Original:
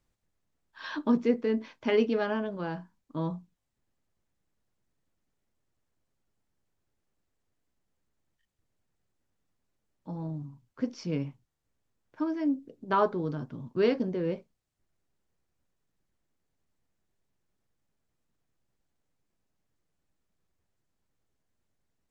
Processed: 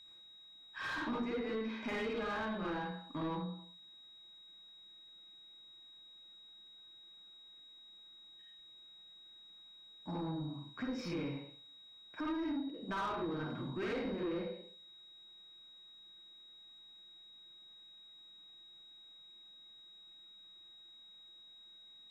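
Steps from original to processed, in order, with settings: reverberation RT60 0.45 s, pre-delay 48 ms, DRR -4.5 dB; compression 2.5:1, threshold -39 dBFS, peak gain reduction 15 dB; overdrive pedal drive 22 dB, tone 2.1 kHz, clips at -23.5 dBFS; whistle 3.8 kHz -48 dBFS; bass shelf 190 Hz +5 dB; trim -7 dB

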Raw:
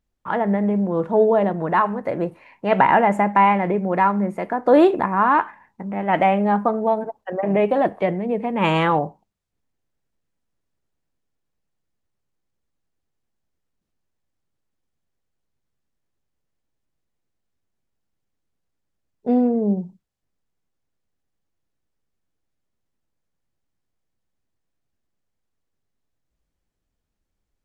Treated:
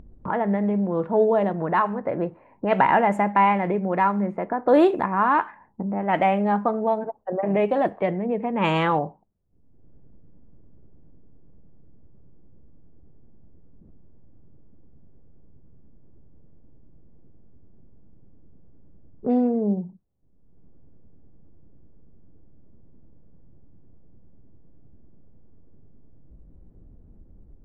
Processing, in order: level-controlled noise filter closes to 340 Hz, open at -13.5 dBFS; upward compressor, threshold -18 dBFS; trim -3 dB

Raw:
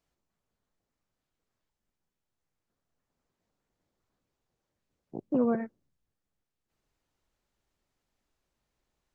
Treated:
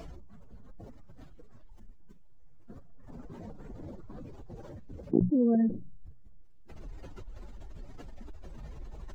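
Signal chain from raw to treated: spectral contrast enhancement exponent 2.2; hum notches 60/120/180 Hz; level flattener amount 100%

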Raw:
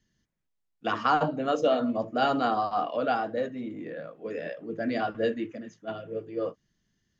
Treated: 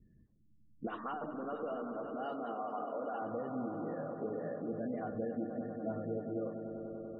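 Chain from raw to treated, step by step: local Wiener filter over 15 samples; bass shelf 420 Hz +9.5 dB; peak limiter -19 dBFS, peak gain reduction 9 dB; treble shelf 4.3 kHz -4 dB; phase dispersion highs, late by 66 ms, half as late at 2.8 kHz; hard clipper -19 dBFS, distortion -35 dB; compression 10:1, threshold -40 dBFS, peak gain reduction 17.5 dB; 0.87–3.22 s: high-pass 300 Hz 12 dB/octave; echo with a slow build-up 97 ms, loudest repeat 5, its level -12 dB; spectral gate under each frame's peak -30 dB strong; trim +3 dB

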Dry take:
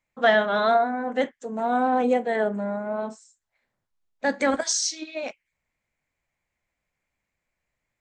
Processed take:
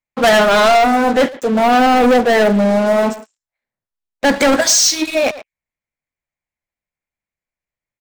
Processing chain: waveshaping leveller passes 5; speakerphone echo 110 ms, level -12 dB

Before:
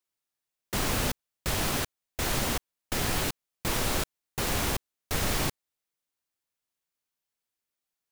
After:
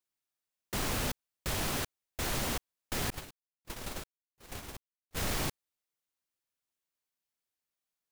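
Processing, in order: 3.10–5.17 s: gate -25 dBFS, range -44 dB; saturation -20.5 dBFS, distortion -20 dB; trim -3.5 dB

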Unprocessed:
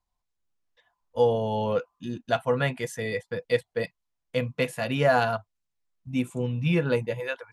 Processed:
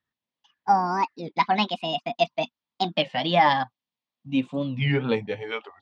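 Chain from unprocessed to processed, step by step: gliding tape speed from 178% -> 81%; cabinet simulation 170–4900 Hz, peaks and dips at 240 Hz +4 dB, 390 Hz -7 dB, 990 Hz +4 dB, 1.4 kHz -8 dB, 3.4 kHz +5 dB; warped record 33 1/3 rpm, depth 250 cents; trim +2.5 dB

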